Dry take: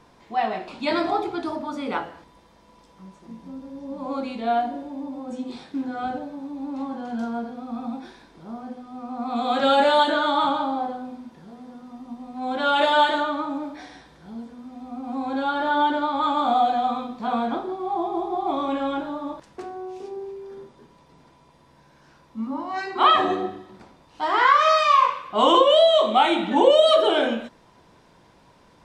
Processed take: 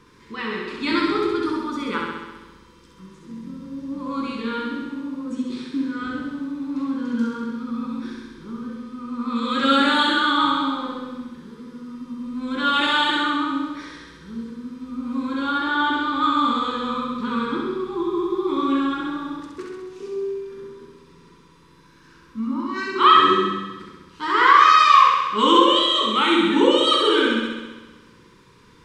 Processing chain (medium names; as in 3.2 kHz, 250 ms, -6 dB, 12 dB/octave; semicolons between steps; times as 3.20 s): Chebyshev band-stop 440–1100 Hz, order 2; flutter echo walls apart 11.3 m, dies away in 1.2 s; trim +3 dB